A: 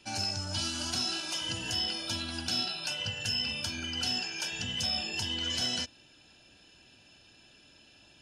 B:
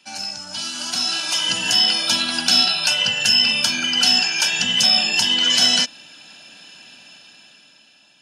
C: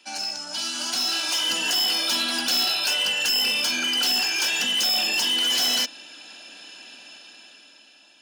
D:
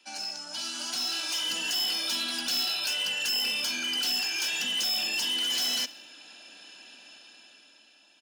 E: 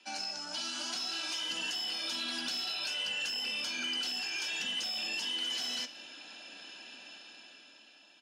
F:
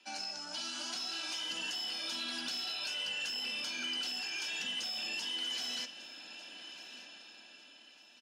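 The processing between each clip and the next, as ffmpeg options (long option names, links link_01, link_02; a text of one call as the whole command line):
ffmpeg -i in.wav -af "highpass=frequency=180:width=0.5412,highpass=frequency=180:width=1.3066,equalizer=frequency=370:width_type=o:width=1.1:gain=-11,dynaudnorm=framelen=220:gausssize=11:maxgain=12dB,volume=4.5dB" out.wav
ffmpeg -i in.wav -af "asoftclip=type=tanh:threshold=-19.5dB,lowshelf=frequency=210:width_type=q:width=1.5:gain=-11.5" out.wav
ffmpeg -i in.wav -filter_complex "[0:a]acrossover=split=270|1700|5700[link_01][link_02][link_03][link_04];[link_02]alimiter=level_in=7.5dB:limit=-24dB:level=0:latency=1,volume=-7.5dB[link_05];[link_01][link_05][link_03][link_04]amix=inputs=4:normalize=0,aecho=1:1:67|134|201|268:0.0841|0.0471|0.0264|0.0148,volume=-6dB" out.wav
ffmpeg -i in.wav -af "acompressor=threshold=-34dB:ratio=5,flanger=delay=9.3:depth=3.7:regen=-67:speed=1.1:shape=triangular,adynamicsmooth=sensitivity=1.5:basefreq=7900,volume=6dB" out.wav
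ffmpeg -i in.wav -af "aecho=1:1:1199|2398|3597:0.158|0.0523|0.0173,volume=-2.5dB" out.wav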